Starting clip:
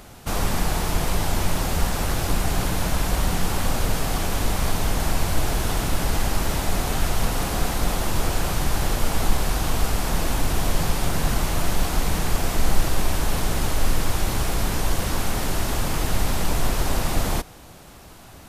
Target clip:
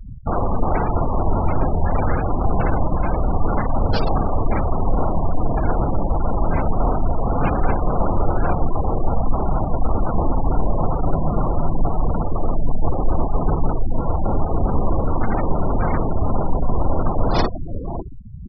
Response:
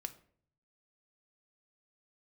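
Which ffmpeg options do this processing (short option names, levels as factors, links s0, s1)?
-filter_complex "[0:a]asplit=2[s0][s1];[s1]aecho=0:1:52|76:0.501|0.237[s2];[s0][s2]amix=inputs=2:normalize=0,acontrast=79,highshelf=f=7300:g=-9,areverse,acompressor=threshold=0.0891:ratio=6,areverse,bass=f=250:g=-2,treble=f=4000:g=11,bandreject=f=60:t=h:w=6,bandreject=f=120:t=h:w=6,bandreject=f=180:t=h:w=6,bandreject=f=240:t=h:w=6,bandreject=f=300:t=h:w=6,bandreject=f=360:t=h:w=6,bandreject=f=420:t=h:w=6,asplit=2[s3][s4];[s4]adelay=553.9,volume=0.398,highshelf=f=4000:g=-12.5[s5];[s3][s5]amix=inputs=2:normalize=0,asplit=3[s6][s7][s8];[s7]asetrate=35002,aresample=44100,atempo=1.25992,volume=0.282[s9];[s8]asetrate=58866,aresample=44100,atempo=0.749154,volume=0.141[s10];[s6][s9][s10]amix=inputs=3:normalize=0,afwtdn=0.0282,afftfilt=real='re*gte(hypot(re,im),0.0501)':imag='im*gte(hypot(re,im),0.0501)':win_size=1024:overlap=0.75,volume=2.51"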